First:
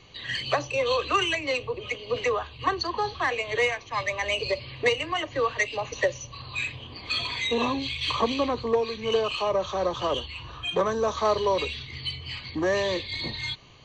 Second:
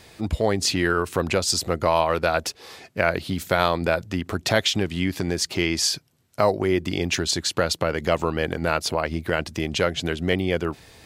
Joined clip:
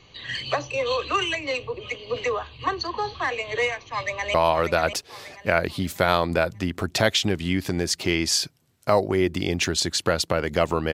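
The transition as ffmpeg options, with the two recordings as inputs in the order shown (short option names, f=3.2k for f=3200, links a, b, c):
-filter_complex "[0:a]apad=whole_dur=10.93,atrim=end=10.93,atrim=end=4.342[a];[1:a]atrim=start=1.848:end=8.44[b];[a][b]acrossfade=d=0.004:c1=hsin:c2=hsin,asplit=2[c][d];[d]afade=t=in:st=3.84:d=0.01,afade=t=out:st=4.34:d=0.01,aecho=0:1:590|1180|1770|2360:0.375837|0.150335|0.060134|0.0240536[e];[c][e]amix=inputs=2:normalize=0"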